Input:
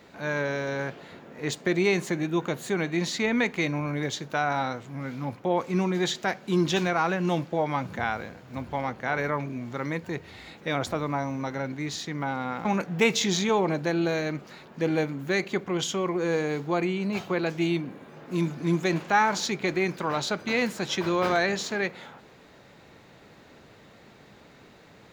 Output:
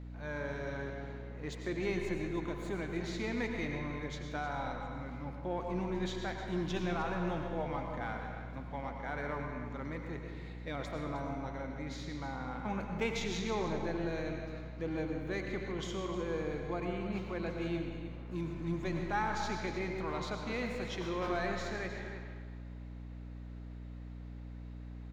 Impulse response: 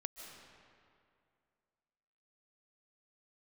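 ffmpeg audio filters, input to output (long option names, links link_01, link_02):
-filter_complex "[0:a]aemphasis=mode=reproduction:type=cd,aecho=1:1:310:0.237,asplit=2[link_01][link_02];[link_02]aeval=exprs='clip(val(0),-1,0.0708)':channel_layout=same,volume=-6.5dB[link_03];[link_01][link_03]amix=inputs=2:normalize=0[link_04];[1:a]atrim=start_sample=2205,asetrate=70560,aresample=44100[link_05];[link_04][link_05]afir=irnorm=-1:irlink=0,aeval=exprs='val(0)+0.0141*(sin(2*PI*60*n/s)+sin(2*PI*2*60*n/s)/2+sin(2*PI*3*60*n/s)/3+sin(2*PI*4*60*n/s)/4+sin(2*PI*5*60*n/s)/5)':channel_layout=same,volume=-7dB"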